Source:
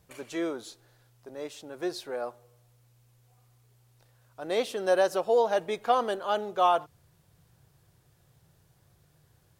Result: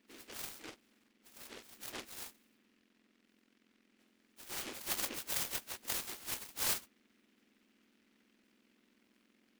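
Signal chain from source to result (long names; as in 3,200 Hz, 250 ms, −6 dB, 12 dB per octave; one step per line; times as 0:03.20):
frequency axis turned over on the octave scale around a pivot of 1,800 Hz
short delay modulated by noise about 2,100 Hz, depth 0.32 ms
level −8 dB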